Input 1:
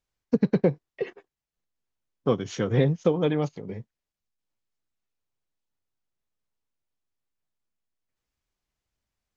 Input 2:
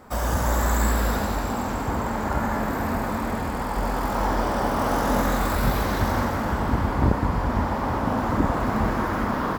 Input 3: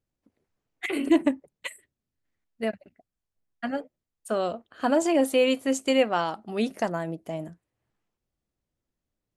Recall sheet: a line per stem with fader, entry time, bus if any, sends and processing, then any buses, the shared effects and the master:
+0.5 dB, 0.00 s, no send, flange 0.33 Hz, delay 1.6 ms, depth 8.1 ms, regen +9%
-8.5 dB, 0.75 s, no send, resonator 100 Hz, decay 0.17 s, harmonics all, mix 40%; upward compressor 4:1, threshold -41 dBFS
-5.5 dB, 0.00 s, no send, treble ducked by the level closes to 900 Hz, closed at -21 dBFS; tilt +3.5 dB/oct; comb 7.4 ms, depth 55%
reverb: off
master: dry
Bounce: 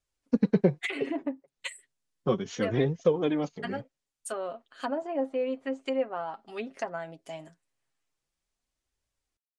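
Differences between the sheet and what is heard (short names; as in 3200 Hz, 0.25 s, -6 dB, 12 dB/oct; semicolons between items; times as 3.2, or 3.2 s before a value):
stem 2: muted; master: extra LPF 10000 Hz 24 dB/oct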